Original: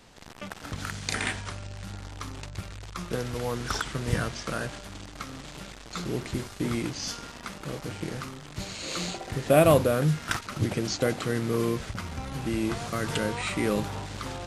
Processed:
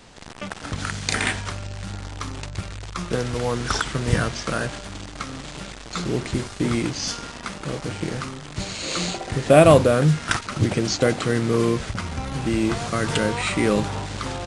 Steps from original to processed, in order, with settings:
downsampling to 22,050 Hz
level +6.5 dB

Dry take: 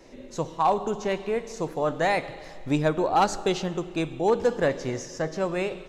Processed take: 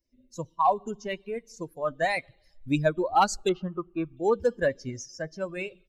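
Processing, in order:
spectral dynamics exaggerated over time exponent 2
0:03.49–0:04.17: low-pass with resonance 1,200 Hz, resonance Q 7.9
harmonic and percussive parts rebalanced percussive +4 dB

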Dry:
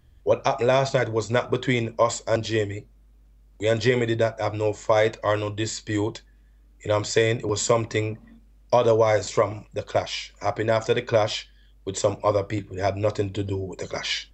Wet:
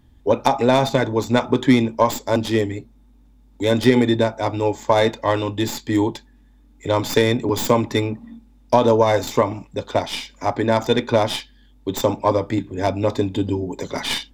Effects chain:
stylus tracing distortion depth 0.093 ms
hollow resonant body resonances 250/860/3,600 Hz, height 12 dB, ringing for 35 ms
level +1.5 dB

